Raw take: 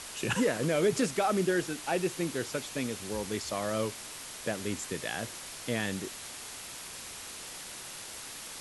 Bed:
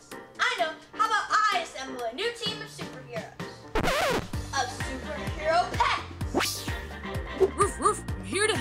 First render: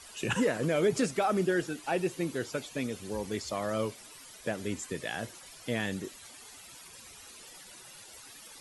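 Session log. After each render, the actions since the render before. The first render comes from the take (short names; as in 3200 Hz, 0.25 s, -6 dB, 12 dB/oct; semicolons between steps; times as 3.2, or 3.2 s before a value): denoiser 13 dB, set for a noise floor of -44 dBFS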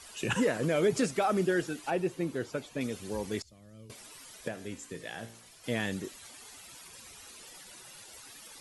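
1.9–2.81 high shelf 2200 Hz -7.5 dB; 3.42–3.9 passive tone stack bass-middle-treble 10-0-1; 4.48–5.64 resonator 57 Hz, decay 0.64 s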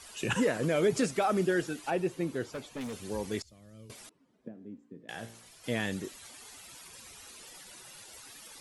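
2.52–3.03 hard clip -34.5 dBFS; 4.09–5.09 band-pass 240 Hz, Q 2.4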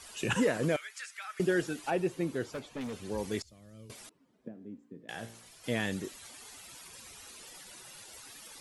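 0.76–1.4 ladder high-pass 1400 Hz, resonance 45%; 2.59–3.18 high shelf 6500 Hz -8 dB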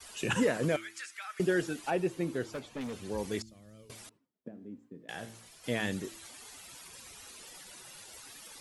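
de-hum 110.5 Hz, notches 3; expander -56 dBFS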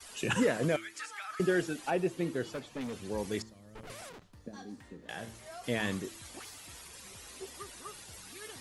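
add bed -23.5 dB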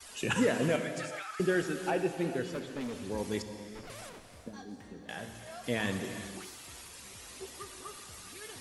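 non-linear reverb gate 0.48 s flat, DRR 7 dB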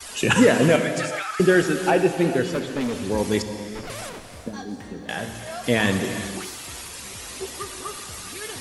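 gain +12 dB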